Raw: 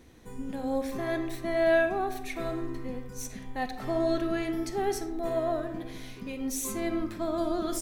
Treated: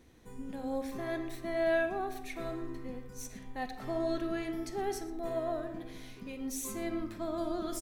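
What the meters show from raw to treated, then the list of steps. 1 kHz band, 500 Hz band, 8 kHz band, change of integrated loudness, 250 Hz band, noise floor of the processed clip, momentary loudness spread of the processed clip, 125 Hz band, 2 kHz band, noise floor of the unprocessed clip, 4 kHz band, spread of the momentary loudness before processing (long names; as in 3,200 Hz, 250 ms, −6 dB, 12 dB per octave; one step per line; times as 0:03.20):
−5.5 dB, −5.5 dB, −5.5 dB, −5.5 dB, −5.5 dB, −49 dBFS, 13 LU, −6.0 dB, −5.5 dB, −44 dBFS, −5.5 dB, 13 LU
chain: single-tap delay 118 ms −19.5 dB
level −5.5 dB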